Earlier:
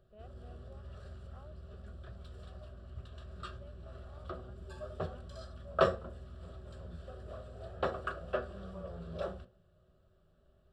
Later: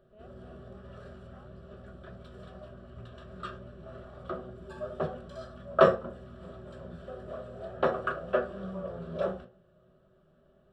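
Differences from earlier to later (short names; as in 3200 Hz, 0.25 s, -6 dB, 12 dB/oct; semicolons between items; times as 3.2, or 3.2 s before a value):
background: send +10.0 dB; master: add tone controls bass -2 dB, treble -4 dB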